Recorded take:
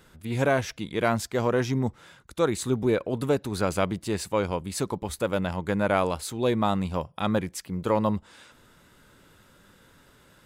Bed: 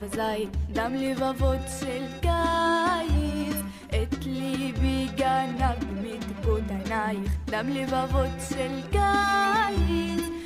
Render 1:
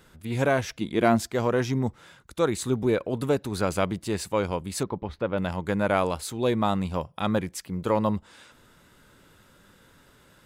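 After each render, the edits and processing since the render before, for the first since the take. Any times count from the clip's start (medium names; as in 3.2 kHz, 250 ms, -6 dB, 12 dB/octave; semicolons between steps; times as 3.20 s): 0.81–1.33 s: small resonant body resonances 240/340/670 Hz, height 7 dB; 4.83–5.38 s: distance through air 310 m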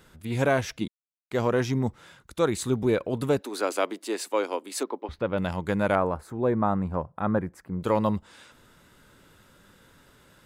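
0.88–1.31 s: mute; 3.41–5.09 s: steep high-pass 260 Hz 48 dB/octave; 5.95–7.81 s: FFT filter 1.6 kHz 0 dB, 3.1 kHz -21 dB, 12 kHz -16 dB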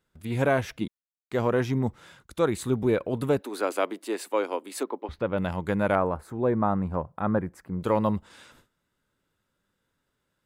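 gate with hold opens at -43 dBFS; dynamic bell 5.8 kHz, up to -7 dB, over -52 dBFS, Q 0.94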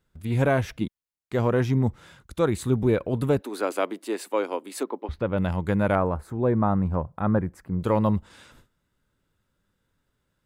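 bass shelf 140 Hz +10 dB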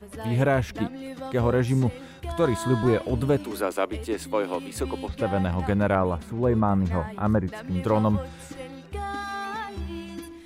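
add bed -9.5 dB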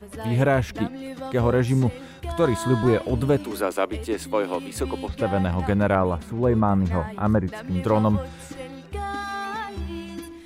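trim +2 dB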